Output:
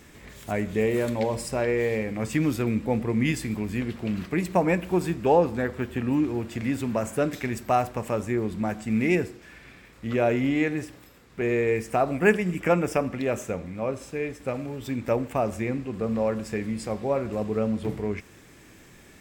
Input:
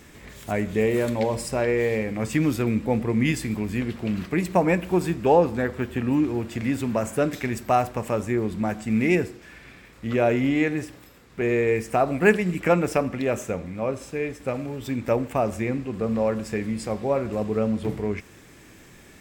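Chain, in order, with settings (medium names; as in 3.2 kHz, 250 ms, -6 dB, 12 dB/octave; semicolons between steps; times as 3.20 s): 12.17–13.03 s: band-stop 4.1 kHz, Q 6.1; trim -2 dB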